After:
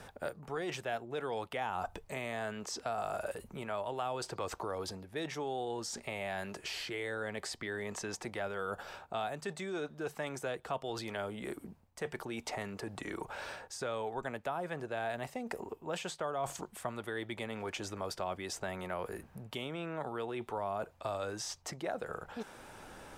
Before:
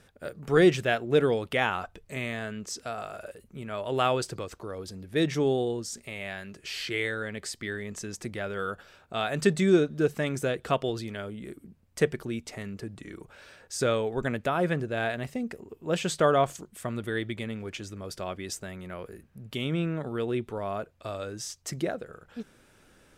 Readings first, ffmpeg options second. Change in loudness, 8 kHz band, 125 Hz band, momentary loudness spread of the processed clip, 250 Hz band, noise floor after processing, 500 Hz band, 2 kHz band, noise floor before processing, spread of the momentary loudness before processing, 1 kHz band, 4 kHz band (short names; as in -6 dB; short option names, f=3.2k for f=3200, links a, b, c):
-10.0 dB, -5.5 dB, -13.0 dB, 5 LU, -12.5 dB, -59 dBFS, -10.0 dB, -8.0 dB, -61 dBFS, 17 LU, -5.0 dB, -7.0 dB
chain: -filter_complex "[0:a]areverse,acompressor=threshold=-38dB:ratio=6,areverse,equalizer=f=850:w=1.6:g=11.5,acrossover=split=370|830|5300[a][b][c][d];[a]acompressor=threshold=-52dB:ratio=4[e];[b]acompressor=threshold=-46dB:ratio=4[f];[c]acompressor=threshold=-46dB:ratio=4[g];[d]acompressor=threshold=-53dB:ratio=4[h];[e][f][g][h]amix=inputs=4:normalize=0,volume=5.5dB"